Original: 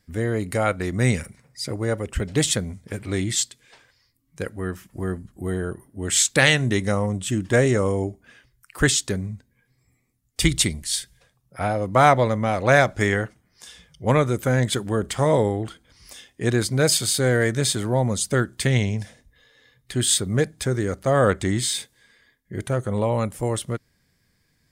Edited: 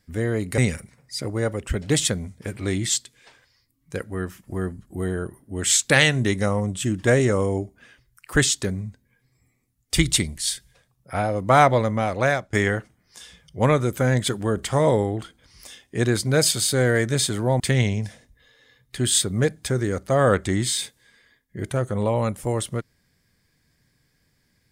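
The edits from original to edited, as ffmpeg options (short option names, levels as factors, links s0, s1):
-filter_complex "[0:a]asplit=4[s0][s1][s2][s3];[s0]atrim=end=0.582[s4];[s1]atrim=start=1.038:end=12.99,asetpts=PTS-STARTPTS,afade=t=out:st=11.272:d=0.68:c=qsin:silence=0.0794328[s5];[s2]atrim=start=12.99:end=18.062,asetpts=PTS-STARTPTS,afade=t=in:d=0.004:c=hsin:silence=0.0794328[s6];[s3]atrim=start=18.558[s7];[s5][s6]concat=n=2:v=0:a=1[s8];[s4][s8]acrossfade=d=0.004:c1=hsin:c2=hsin[s9];[s9][s7]acrossfade=d=0.004:c1=hsin:c2=hsin"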